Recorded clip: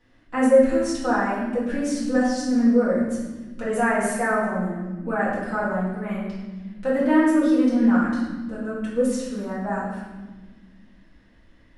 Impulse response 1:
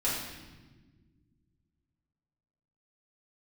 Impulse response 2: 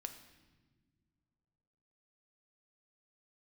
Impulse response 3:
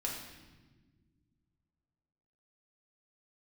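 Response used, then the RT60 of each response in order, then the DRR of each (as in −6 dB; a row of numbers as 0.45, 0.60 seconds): 1; 1.4 s, non-exponential decay, 1.4 s; −9.5, 6.5, −3.0 decibels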